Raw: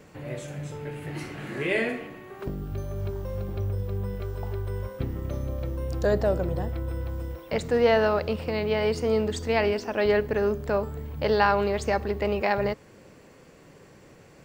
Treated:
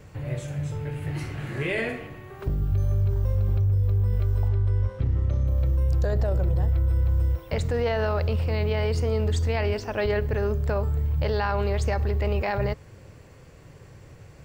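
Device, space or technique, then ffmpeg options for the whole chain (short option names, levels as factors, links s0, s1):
car stereo with a boomy subwoofer: -filter_complex "[0:a]lowshelf=f=150:t=q:w=1.5:g=10.5,alimiter=limit=0.15:level=0:latency=1:release=28,asettb=1/sr,asplit=3[s0][s1][s2];[s0]atrim=end=4.484[s3];[s1]atrim=start=4.48:end=5.47,asetpts=PTS-STARTPTS,afade=t=in:d=0.004:c=qsin,afade=t=out:st=0.986:d=0.004:c=qsin,lowpass=6100[s4];[s2]atrim=start=5.466[s5];[s3][s4]acrossfade=d=0.004:c1=hsin:c2=qsin[s6];[s6][s5]acrossfade=d=0.004:c1=qsin:c2=hsin"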